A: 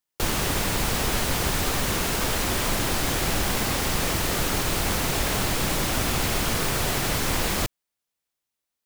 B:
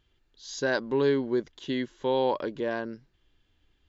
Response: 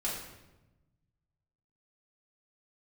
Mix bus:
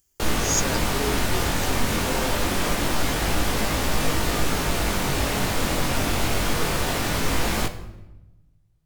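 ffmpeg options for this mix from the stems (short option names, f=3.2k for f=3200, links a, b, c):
-filter_complex "[0:a]lowpass=f=2.3k:p=1,aemphasis=mode=production:type=cd,flanger=delay=18.5:depth=3.7:speed=0.26,volume=3dB,asplit=2[a][b];[b]volume=-10.5dB[c];[1:a]aexciter=amount=15.5:drive=9.7:freq=5.8k,volume=-7.5dB[d];[2:a]atrim=start_sample=2205[e];[c][e]afir=irnorm=-1:irlink=0[f];[a][d][f]amix=inputs=3:normalize=0"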